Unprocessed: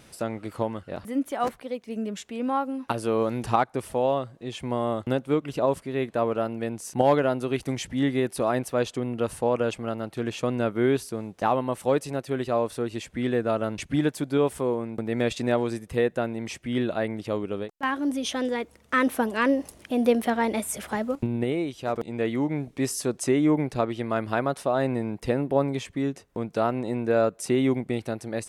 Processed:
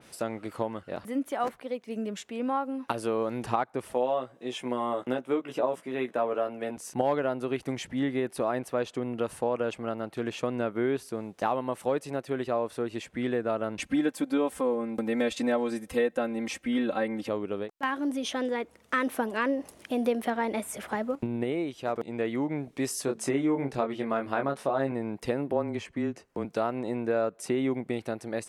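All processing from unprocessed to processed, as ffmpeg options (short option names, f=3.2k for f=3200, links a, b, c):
-filter_complex "[0:a]asettb=1/sr,asplit=3[a][b][c];[a]atrim=end=3.934[d];[b]atrim=start=3.93:end=6.77,asetpts=PTS-STARTPTS,afade=t=in:d=0.004:c=qsin,afade=t=out:st=2.836:d=0.004:c=qsin,highpass=220,bandreject=f=4.4k:w=7.6,asplit=2[e][f];[f]adelay=16,volume=-4.5dB[g];[e][g]amix=inputs=2:normalize=0,atrim=end_sample=125244[h];[c]atrim=start=6.766[i];[d][h]acrossfade=d=0.004:c1=hsin:c2=qsin[j];[j][i]acrossfade=d=0.004:c1=qsin:c2=hsin,asettb=1/sr,asplit=3[k][l][m];[k]atrim=end=13.794[n];[l]atrim=start=13.79:end=17.29,asetpts=PTS-STARTPTS,afade=t=in:d=0.004:c=qsin,afade=t=out:st=3.496:d=0.004:c=qsin,highshelf=f=5.2k:g=4.5,aecho=1:1:3.8:0.97,atrim=end_sample=154350[o];[m]atrim=start=17.286[p];[n][o]acrossfade=d=0.004:c1=hsin:c2=qsin[q];[q][p]acrossfade=d=0.004:c1=qsin:c2=hsin,asettb=1/sr,asplit=3[r][s][t];[r]atrim=end=23.054[u];[s]atrim=start=23.05:end=24.92,asetpts=PTS-STARTPTS,afade=t=in:d=0.004:c=qsin,afade=t=out:st=1.866:d=0.004:c=qsin,asplit=2[v][w];[w]adelay=22,volume=-4.5dB[x];[v][x]amix=inputs=2:normalize=0,atrim=end_sample=82467,bandreject=f=219.3:t=h:w=4,bandreject=f=438.6:t=h:w=4[y];[t]atrim=start=24.916[z];[u][y]acrossfade=d=0.004:c1=hsin:c2=qsin[aa];[aa][z]acrossfade=d=0.004:c1=qsin:c2=hsin,asettb=1/sr,asplit=3[ab][ac][ad];[ab]atrim=end=25.524[ae];[ac]atrim=start=25.52:end=26.45,asetpts=PTS-STARTPTS,afade=t=in:d=0.004:c=qsin,afade=t=out:st=0.926:d=0.004:c=qsin,highshelf=f=11k:g=-8.5,bandreject=f=3.6k:w=8.4,afreqshift=-20[af];[ad]atrim=start=26.446[ag];[ae][af]acrossfade=d=0.004:c1=hsin:c2=qsin[ah];[ah][ag]acrossfade=d=0.004:c1=qsin:c2=hsin,lowshelf=f=120:g=-12,acompressor=threshold=-26dB:ratio=2,adynamicequalizer=threshold=0.00355:dfrequency=3000:dqfactor=0.7:tfrequency=3000:tqfactor=0.7:attack=5:release=100:ratio=0.375:range=4:mode=cutabove:tftype=highshelf"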